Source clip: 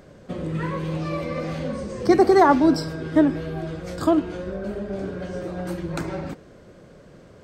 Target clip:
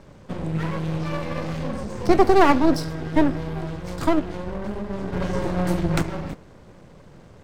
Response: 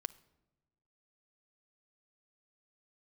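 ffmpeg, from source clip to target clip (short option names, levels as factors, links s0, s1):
-filter_complex "[0:a]acrossover=split=190[s0][s1];[s1]aeval=exprs='max(val(0),0)':c=same[s2];[s0][s2]amix=inputs=2:normalize=0,asplit=3[s3][s4][s5];[s3]afade=t=out:st=5.12:d=0.02[s6];[s4]acontrast=64,afade=t=in:st=5.12:d=0.02,afade=t=out:st=6.01:d=0.02[s7];[s5]afade=t=in:st=6.01:d=0.02[s8];[s6][s7][s8]amix=inputs=3:normalize=0,volume=1.41"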